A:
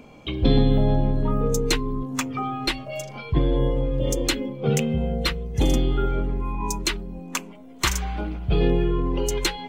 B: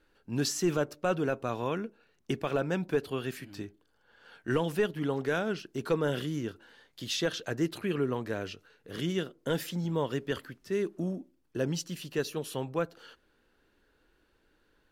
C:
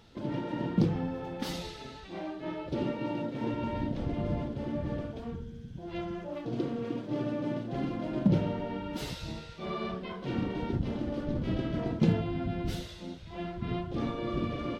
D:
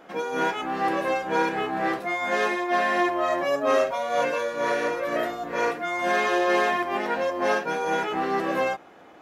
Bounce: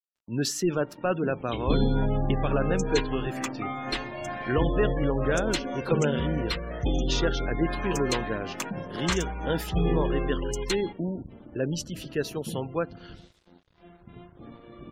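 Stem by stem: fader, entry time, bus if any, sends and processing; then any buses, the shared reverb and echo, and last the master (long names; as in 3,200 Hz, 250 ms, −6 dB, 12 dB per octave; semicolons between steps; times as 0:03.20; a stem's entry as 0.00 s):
−6.0 dB, 1.25 s, no send, no processing
+2.5 dB, 0.00 s, no send, no processing
−11.5 dB, 0.45 s, no send, no processing
−12.5 dB, 1.55 s, no send, mains-hum notches 60/120/180/240/300/360/420/480/540 Hz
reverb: not used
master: dead-zone distortion −56 dBFS; gate on every frequency bin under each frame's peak −30 dB strong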